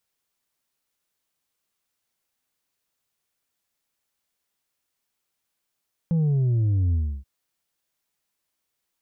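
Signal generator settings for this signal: sub drop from 170 Hz, over 1.13 s, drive 3.5 dB, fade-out 0.31 s, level -19 dB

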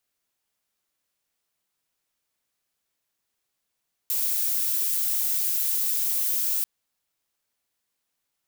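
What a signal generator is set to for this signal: noise violet, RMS -25 dBFS 2.54 s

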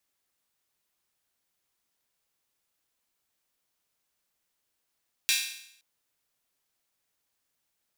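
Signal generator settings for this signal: open hi-hat length 0.52 s, high-pass 2.6 kHz, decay 0.71 s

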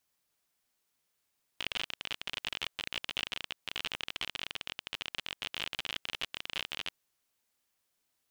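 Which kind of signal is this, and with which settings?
random clicks 42 per s -18.5 dBFS 5.33 s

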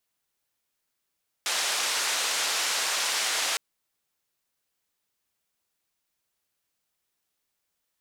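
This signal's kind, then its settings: noise band 620–6900 Hz, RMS -27.5 dBFS 2.11 s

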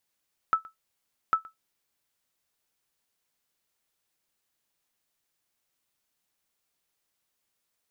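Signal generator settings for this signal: sonar ping 1.31 kHz, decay 0.14 s, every 0.80 s, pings 2, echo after 0.12 s, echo -22.5 dB -14 dBFS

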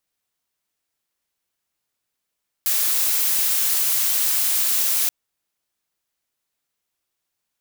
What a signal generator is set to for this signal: noise blue, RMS -20 dBFS 2.43 s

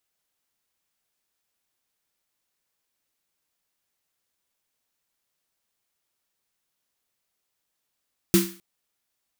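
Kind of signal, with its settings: snare drum length 0.26 s, tones 190 Hz, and 340 Hz, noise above 1.1 kHz, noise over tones -6 dB, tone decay 0.34 s, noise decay 0.41 s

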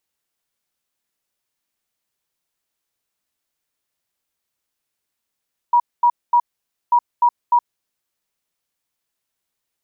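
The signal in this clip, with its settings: beep pattern sine 960 Hz, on 0.07 s, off 0.23 s, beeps 3, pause 0.52 s, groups 2, -10 dBFS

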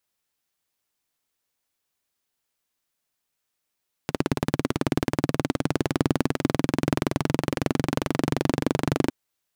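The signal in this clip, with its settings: single-cylinder engine model, changing speed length 5.01 s, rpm 2100, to 2900, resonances 150/260 Hz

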